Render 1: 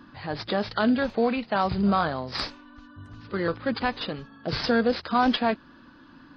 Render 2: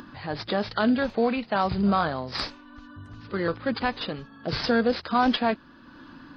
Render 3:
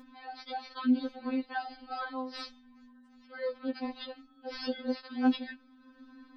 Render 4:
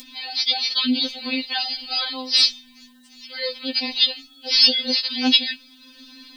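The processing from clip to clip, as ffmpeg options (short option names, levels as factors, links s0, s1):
-af "acompressor=mode=upward:threshold=0.0112:ratio=2.5"
-af "afftfilt=real='re*3.46*eq(mod(b,12),0)':imag='im*3.46*eq(mod(b,12),0)':win_size=2048:overlap=0.75,volume=0.376"
-af "aexciter=amount=15.9:drive=3.5:freq=2200,volume=1.58"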